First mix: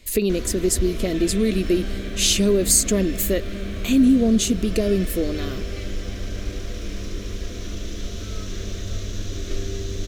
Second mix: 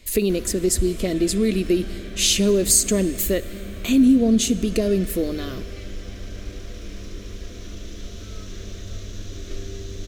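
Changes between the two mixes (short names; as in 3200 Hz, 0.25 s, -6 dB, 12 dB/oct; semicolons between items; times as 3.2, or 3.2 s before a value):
background -5.0 dB; reverb: on, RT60 2.3 s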